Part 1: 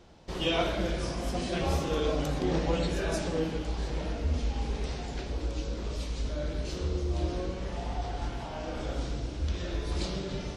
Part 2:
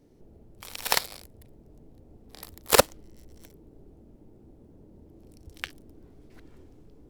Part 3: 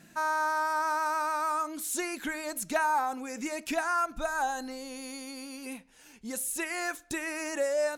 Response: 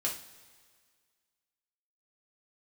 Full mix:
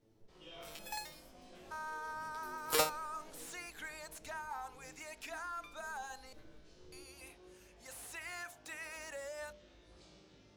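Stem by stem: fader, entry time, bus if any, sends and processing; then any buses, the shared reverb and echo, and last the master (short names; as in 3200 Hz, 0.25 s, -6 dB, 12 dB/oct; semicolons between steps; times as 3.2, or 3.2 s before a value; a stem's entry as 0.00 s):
-13.0 dB, 0.00 s, bus A, no send, resonator 52 Hz, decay 0.96 s, harmonics all, mix 90%
+1.0 dB, 0.00 s, no bus, no send, stepped resonator 3.8 Hz 110–1200 Hz
-9.5 dB, 1.55 s, muted 6.33–6.92, bus A, no send, HPF 740 Hz 12 dB/oct; slew limiter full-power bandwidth 87 Hz
bus A: 0.0 dB, low shelf 97 Hz -10.5 dB; limiter -35 dBFS, peak gain reduction 7 dB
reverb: off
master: de-hum 54.07 Hz, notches 19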